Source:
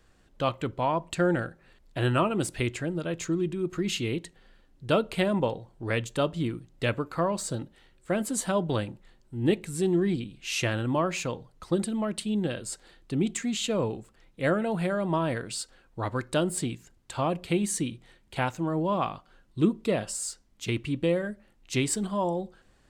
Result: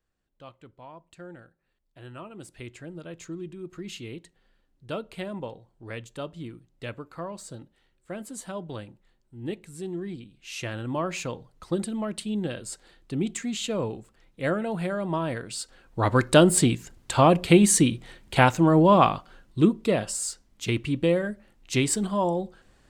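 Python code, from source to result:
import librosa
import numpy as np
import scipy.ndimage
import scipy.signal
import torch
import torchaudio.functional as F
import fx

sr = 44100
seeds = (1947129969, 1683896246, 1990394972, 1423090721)

y = fx.gain(x, sr, db=fx.line((2.04, -19.0), (2.94, -9.0), (10.33, -9.0), (11.14, -1.0), (15.51, -1.0), (16.19, 10.0), (19.07, 10.0), (19.73, 3.0)))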